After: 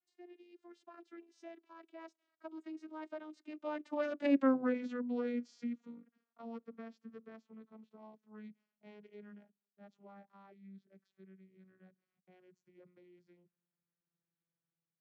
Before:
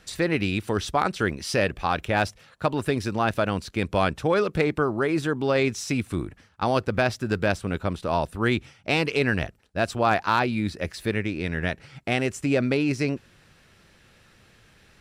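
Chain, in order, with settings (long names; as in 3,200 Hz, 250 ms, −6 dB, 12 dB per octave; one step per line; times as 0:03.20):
vocoder with a gliding carrier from E4, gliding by −11 semitones
source passing by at 0:04.43, 27 m/s, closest 5.3 metres
automatic gain control gain up to 5 dB
level −8 dB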